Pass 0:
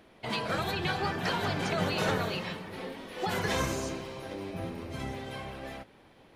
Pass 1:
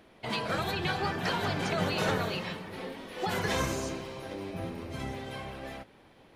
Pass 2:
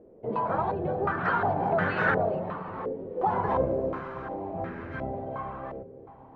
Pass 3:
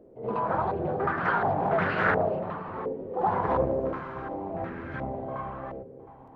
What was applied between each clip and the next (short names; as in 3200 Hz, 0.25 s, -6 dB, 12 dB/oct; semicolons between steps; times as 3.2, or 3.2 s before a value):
nothing audible
split-band echo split 310 Hz, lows 0.596 s, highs 0.336 s, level -15 dB; stepped low-pass 2.8 Hz 470–1600 Hz
on a send: reverse echo 75 ms -9.5 dB; on the sum: Doppler distortion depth 0.37 ms